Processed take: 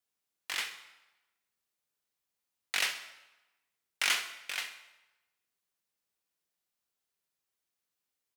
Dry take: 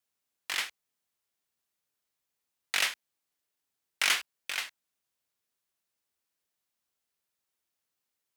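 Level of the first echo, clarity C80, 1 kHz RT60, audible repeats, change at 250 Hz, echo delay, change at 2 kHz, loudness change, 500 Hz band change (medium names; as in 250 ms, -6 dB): -13.5 dB, 13.0 dB, 1.1 s, 2, -2.0 dB, 65 ms, -2.5 dB, -2.5 dB, -2.5 dB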